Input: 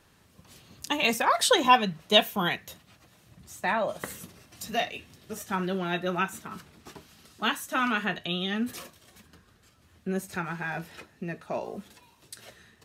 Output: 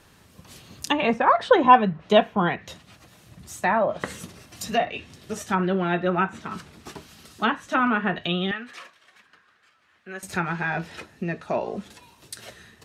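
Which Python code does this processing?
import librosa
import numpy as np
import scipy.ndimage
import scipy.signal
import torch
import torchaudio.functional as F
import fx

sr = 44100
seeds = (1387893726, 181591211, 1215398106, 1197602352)

y = fx.bandpass_q(x, sr, hz=1700.0, q=1.2, at=(8.51, 10.23))
y = fx.env_lowpass_down(y, sr, base_hz=1500.0, full_db=-24.0)
y = y * 10.0 ** (6.5 / 20.0)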